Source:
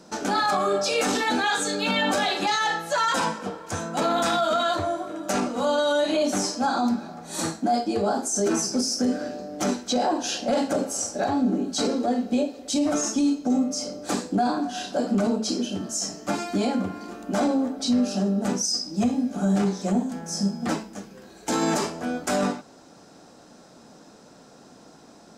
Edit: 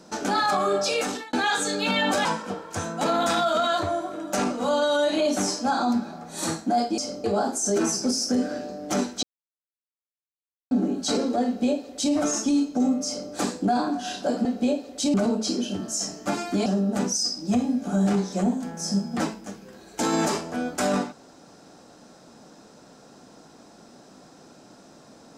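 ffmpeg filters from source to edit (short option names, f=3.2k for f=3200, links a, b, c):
-filter_complex "[0:a]asplit=10[a][b][c][d][e][f][g][h][i][j];[a]atrim=end=1.33,asetpts=PTS-STARTPTS,afade=t=out:st=0.9:d=0.43[k];[b]atrim=start=1.33:end=2.252,asetpts=PTS-STARTPTS,afade=t=in:d=0.004:c=hsin[l];[c]atrim=start=3.208:end=7.942[m];[d]atrim=start=13.758:end=14.022[n];[e]atrim=start=7.938:end=9.93,asetpts=PTS-STARTPTS,afade=t=out:st=1.988:d=0.004:c=hsin[o];[f]atrim=start=9.93:end=11.41,asetpts=PTS-STARTPTS,volume=0[p];[g]atrim=start=11.41:end=15.152,asetpts=PTS-STARTPTS,afade=t=in:d=0.004:c=hsin[q];[h]atrim=start=12.148:end=12.842[r];[i]atrim=start=15.148:end=16.672[s];[j]atrim=start=18.148[t];[k][l]concat=n=2:v=0:a=1[u];[u][m]acrossfade=d=0.004:c1=hsin:c2=hsin[v];[v][n]acrossfade=d=0.004:c1=hsin:c2=hsin[w];[o][p][q]concat=n=3:v=0:a=1[x];[w][x]acrossfade=d=0.004:c1=hsin:c2=hsin[y];[y][r]acrossfade=d=0.004:c1=hsin:c2=hsin[z];[z][s]acrossfade=d=0.004:c1=hsin:c2=hsin[aa];[aa][t]acrossfade=d=0.004:c1=hsin:c2=hsin"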